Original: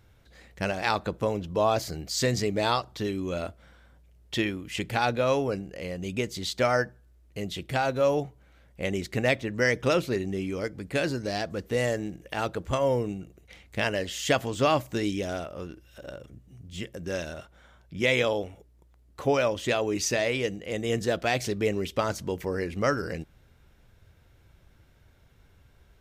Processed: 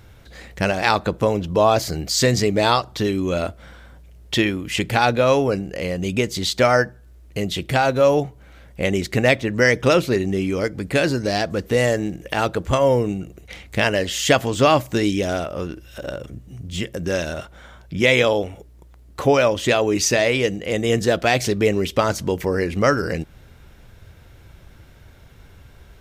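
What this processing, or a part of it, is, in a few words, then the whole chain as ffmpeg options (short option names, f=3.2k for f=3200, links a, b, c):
parallel compression: -filter_complex "[0:a]asplit=2[a][b];[b]acompressor=threshold=-38dB:ratio=6,volume=-1.5dB[c];[a][c]amix=inputs=2:normalize=0,volume=7dB"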